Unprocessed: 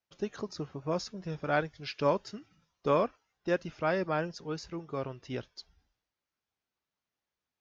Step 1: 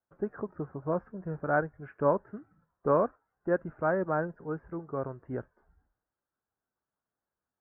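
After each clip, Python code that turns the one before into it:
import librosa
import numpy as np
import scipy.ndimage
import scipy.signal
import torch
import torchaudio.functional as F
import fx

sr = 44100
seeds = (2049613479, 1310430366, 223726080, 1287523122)

y = scipy.signal.sosfilt(scipy.signal.ellip(4, 1.0, 60, 1600.0, 'lowpass', fs=sr, output='sos'), x)
y = y * librosa.db_to_amplitude(2.0)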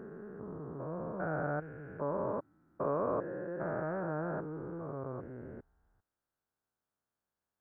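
y = fx.spec_steps(x, sr, hold_ms=400)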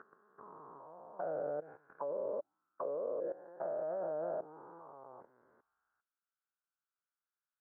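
y = fx.auto_wah(x, sr, base_hz=510.0, top_hz=1400.0, q=4.3, full_db=-30.5, direction='down')
y = fx.level_steps(y, sr, step_db=16)
y = y * librosa.db_to_amplitude(10.5)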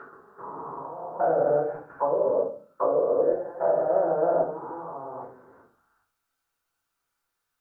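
y = fx.room_shoebox(x, sr, seeds[0], volume_m3=250.0, walls='furnished', distance_m=4.4)
y = y * librosa.db_to_amplitude(7.0)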